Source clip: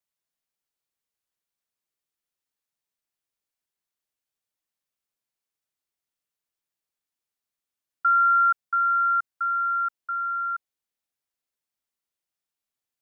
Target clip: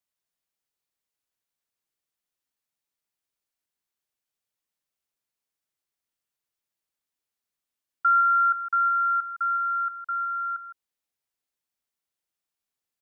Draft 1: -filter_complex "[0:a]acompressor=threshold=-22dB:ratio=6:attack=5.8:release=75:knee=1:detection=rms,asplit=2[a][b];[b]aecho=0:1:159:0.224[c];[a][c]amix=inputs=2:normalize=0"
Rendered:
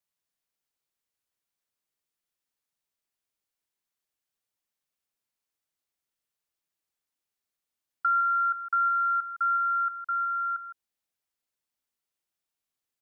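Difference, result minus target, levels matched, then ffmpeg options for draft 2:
compressor: peak gain reduction +4.5 dB
-filter_complex "[0:a]asplit=2[a][b];[b]aecho=0:1:159:0.224[c];[a][c]amix=inputs=2:normalize=0"

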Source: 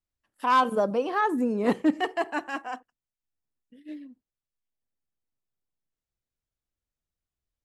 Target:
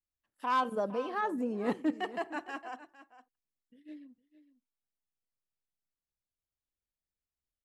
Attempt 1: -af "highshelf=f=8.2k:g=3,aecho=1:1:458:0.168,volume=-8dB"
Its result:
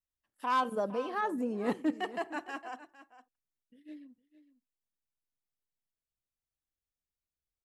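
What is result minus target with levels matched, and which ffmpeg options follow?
8000 Hz band +2.5 dB
-af "highshelf=f=8.2k:g=-3,aecho=1:1:458:0.168,volume=-8dB"

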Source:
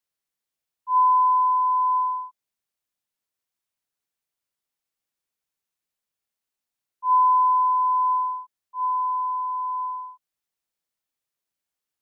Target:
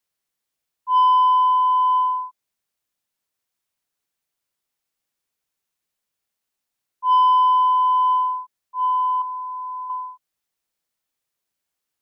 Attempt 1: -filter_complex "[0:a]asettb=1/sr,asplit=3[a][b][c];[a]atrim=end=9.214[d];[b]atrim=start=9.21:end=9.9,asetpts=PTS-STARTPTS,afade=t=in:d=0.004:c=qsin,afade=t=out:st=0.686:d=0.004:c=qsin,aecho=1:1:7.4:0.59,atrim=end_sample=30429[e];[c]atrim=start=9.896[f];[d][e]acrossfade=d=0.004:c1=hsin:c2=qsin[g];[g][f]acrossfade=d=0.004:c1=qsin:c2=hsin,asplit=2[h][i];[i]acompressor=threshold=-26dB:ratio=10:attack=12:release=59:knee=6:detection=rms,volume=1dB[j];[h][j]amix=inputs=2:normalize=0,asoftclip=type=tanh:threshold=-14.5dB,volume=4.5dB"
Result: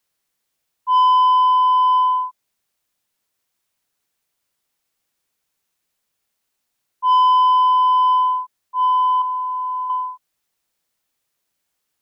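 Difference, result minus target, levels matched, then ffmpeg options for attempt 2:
compressor: peak gain reduction +10 dB
-filter_complex "[0:a]asettb=1/sr,asplit=3[a][b][c];[a]atrim=end=9.214[d];[b]atrim=start=9.21:end=9.9,asetpts=PTS-STARTPTS,afade=t=in:d=0.004:c=qsin,afade=t=out:st=0.686:d=0.004:c=qsin,aecho=1:1:7.4:0.59,atrim=end_sample=30429[e];[c]atrim=start=9.896[f];[d][e]acrossfade=d=0.004:c1=hsin:c2=qsin[g];[g][f]acrossfade=d=0.004:c1=qsin:c2=hsin,asoftclip=type=tanh:threshold=-14.5dB,volume=4.5dB"

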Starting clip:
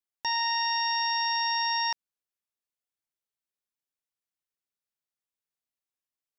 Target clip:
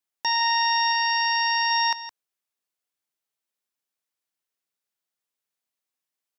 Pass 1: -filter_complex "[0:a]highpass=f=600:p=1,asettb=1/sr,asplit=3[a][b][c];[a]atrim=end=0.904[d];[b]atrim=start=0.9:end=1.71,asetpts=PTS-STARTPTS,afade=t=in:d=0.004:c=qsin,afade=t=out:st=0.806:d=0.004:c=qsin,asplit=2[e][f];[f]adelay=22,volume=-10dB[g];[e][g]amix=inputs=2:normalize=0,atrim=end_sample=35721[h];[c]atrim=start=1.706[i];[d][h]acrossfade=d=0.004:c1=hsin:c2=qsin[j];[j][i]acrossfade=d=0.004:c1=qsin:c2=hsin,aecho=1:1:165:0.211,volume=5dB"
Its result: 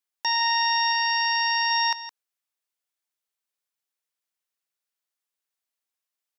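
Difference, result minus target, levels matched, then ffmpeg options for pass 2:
250 Hz band -5.0 dB
-filter_complex "[0:a]highpass=f=200:p=1,asettb=1/sr,asplit=3[a][b][c];[a]atrim=end=0.904[d];[b]atrim=start=0.9:end=1.71,asetpts=PTS-STARTPTS,afade=t=in:d=0.004:c=qsin,afade=t=out:st=0.806:d=0.004:c=qsin,asplit=2[e][f];[f]adelay=22,volume=-10dB[g];[e][g]amix=inputs=2:normalize=0,atrim=end_sample=35721[h];[c]atrim=start=1.706[i];[d][h]acrossfade=d=0.004:c1=hsin:c2=qsin[j];[j][i]acrossfade=d=0.004:c1=qsin:c2=hsin,aecho=1:1:165:0.211,volume=5dB"

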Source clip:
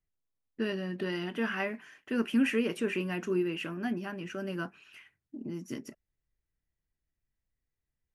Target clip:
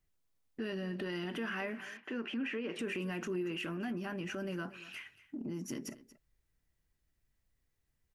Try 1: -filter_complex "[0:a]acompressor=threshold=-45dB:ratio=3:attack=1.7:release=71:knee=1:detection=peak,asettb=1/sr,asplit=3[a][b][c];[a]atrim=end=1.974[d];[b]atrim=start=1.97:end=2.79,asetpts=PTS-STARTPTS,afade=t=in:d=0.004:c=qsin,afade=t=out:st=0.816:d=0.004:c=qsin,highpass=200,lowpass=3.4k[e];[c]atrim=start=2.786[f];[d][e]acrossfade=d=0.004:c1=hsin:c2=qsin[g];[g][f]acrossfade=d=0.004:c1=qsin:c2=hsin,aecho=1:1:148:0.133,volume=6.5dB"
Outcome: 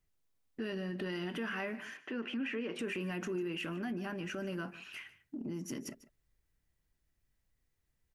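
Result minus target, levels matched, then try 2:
echo 84 ms early
-filter_complex "[0:a]acompressor=threshold=-45dB:ratio=3:attack=1.7:release=71:knee=1:detection=peak,asettb=1/sr,asplit=3[a][b][c];[a]atrim=end=1.974[d];[b]atrim=start=1.97:end=2.79,asetpts=PTS-STARTPTS,afade=t=in:d=0.004:c=qsin,afade=t=out:st=0.816:d=0.004:c=qsin,highpass=200,lowpass=3.4k[e];[c]atrim=start=2.786[f];[d][e]acrossfade=d=0.004:c1=hsin:c2=qsin[g];[g][f]acrossfade=d=0.004:c1=qsin:c2=hsin,aecho=1:1:232:0.133,volume=6.5dB"

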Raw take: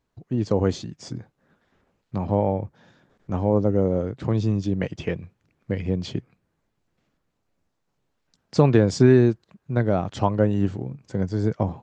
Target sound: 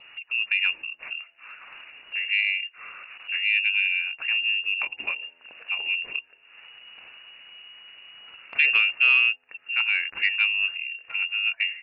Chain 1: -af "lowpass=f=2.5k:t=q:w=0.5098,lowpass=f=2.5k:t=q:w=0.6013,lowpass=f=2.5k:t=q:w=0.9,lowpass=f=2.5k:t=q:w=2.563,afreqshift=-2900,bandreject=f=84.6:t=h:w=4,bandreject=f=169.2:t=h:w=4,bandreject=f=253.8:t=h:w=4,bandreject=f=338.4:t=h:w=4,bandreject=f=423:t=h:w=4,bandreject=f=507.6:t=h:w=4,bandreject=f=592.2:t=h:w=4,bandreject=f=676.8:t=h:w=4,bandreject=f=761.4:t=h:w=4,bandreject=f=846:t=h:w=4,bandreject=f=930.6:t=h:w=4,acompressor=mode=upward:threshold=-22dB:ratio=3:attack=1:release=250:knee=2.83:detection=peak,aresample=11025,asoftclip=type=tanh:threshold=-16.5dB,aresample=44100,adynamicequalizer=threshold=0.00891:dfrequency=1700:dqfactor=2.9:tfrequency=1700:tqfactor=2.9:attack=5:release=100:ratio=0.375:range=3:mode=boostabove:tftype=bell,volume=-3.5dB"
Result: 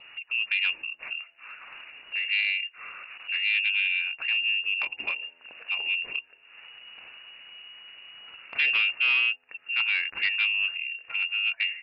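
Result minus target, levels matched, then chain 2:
soft clip: distortion +11 dB
-af "lowpass=f=2.5k:t=q:w=0.5098,lowpass=f=2.5k:t=q:w=0.6013,lowpass=f=2.5k:t=q:w=0.9,lowpass=f=2.5k:t=q:w=2.563,afreqshift=-2900,bandreject=f=84.6:t=h:w=4,bandreject=f=169.2:t=h:w=4,bandreject=f=253.8:t=h:w=4,bandreject=f=338.4:t=h:w=4,bandreject=f=423:t=h:w=4,bandreject=f=507.6:t=h:w=4,bandreject=f=592.2:t=h:w=4,bandreject=f=676.8:t=h:w=4,bandreject=f=761.4:t=h:w=4,bandreject=f=846:t=h:w=4,bandreject=f=930.6:t=h:w=4,acompressor=mode=upward:threshold=-22dB:ratio=3:attack=1:release=250:knee=2.83:detection=peak,aresample=11025,asoftclip=type=tanh:threshold=-7dB,aresample=44100,adynamicequalizer=threshold=0.00891:dfrequency=1700:dqfactor=2.9:tfrequency=1700:tqfactor=2.9:attack=5:release=100:ratio=0.375:range=3:mode=boostabove:tftype=bell,volume=-3.5dB"

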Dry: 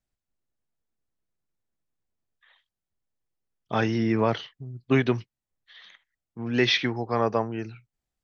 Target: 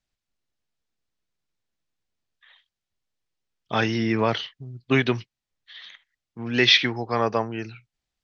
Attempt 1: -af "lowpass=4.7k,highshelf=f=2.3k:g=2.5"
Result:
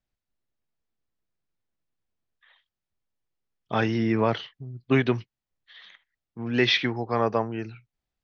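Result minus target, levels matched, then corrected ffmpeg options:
4000 Hz band -4.0 dB
-af "lowpass=4.7k,highshelf=f=2.3k:g=12.5"

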